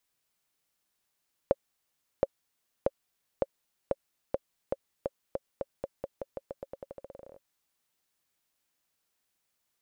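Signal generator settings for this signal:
bouncing ball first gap 0.72 s, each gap 0.88, 548 Hz, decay 36 ms −10.5 dBFS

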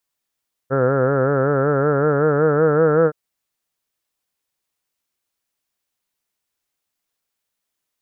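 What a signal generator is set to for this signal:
vowel by formant synthesis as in heard, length 2.42 s, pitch 130 Hz, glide +3.5 semitones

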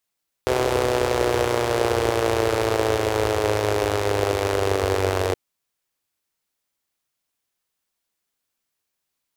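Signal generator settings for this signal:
pulse-train model of a four-cylinder engine, changing speed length 4.87 s, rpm 3,800, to 2,800, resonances 82/430 Hz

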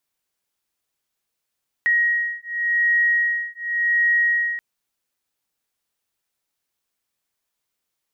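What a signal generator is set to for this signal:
two tones that beat 1,890 Hz, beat 0.89 Hz, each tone −20.5 dBFS 2.73 s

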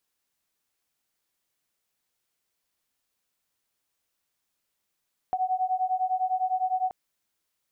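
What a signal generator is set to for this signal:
two tones that beat 740 Hz, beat 9.9 Hz, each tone −27 dBFS 1.58 s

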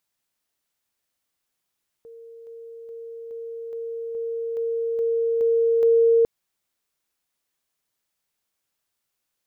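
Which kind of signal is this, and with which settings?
level staircase 460 Hz −40.5 dBFS, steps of 3 dB, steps 10, 0.42 s 0.00 s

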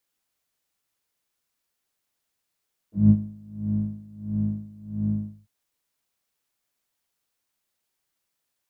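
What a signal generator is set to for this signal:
subtractive patch with tremolo G#2, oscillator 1 triangle, oscillator 2 triangle, interval +12 semitones, oscillator 2 level −3 dB, sub −13.5 dB, noise −28 dB, filter bandpass, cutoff 120 Hz, filter decay 0.06 s, filter sustain 25%, attack 181 ms, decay 0.06 s, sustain −11 dB, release 0.20 s, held 2.35 s, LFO 1.5 Hz, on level 22 dB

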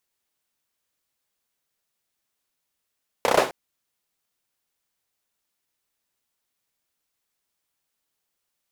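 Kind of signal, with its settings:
synth clap length 0.26 s, bursts 5, apart 31 ms, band 570 Hz, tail 0.36 s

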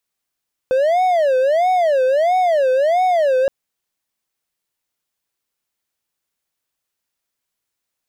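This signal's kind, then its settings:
siren wail 512–743 Hz 1.5 per second triangle −10.5 dBFS 2.77 s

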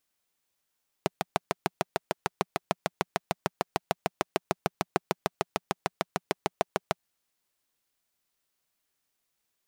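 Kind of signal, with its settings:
pulse-train model of a single-cylinder engine, steady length 5.96 s, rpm 800, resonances 180/390/670 Hz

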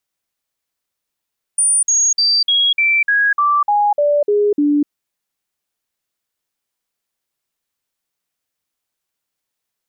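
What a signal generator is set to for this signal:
stepped sweep 9,350 Hz down, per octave 2, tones 11, 0.25 s, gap 0.05 s −11 dBFS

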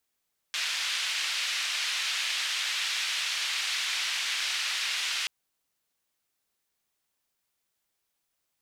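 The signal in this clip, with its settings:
band-limited noise 2,400–3,300 Hz, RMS −30.5 dBFS 4.73 s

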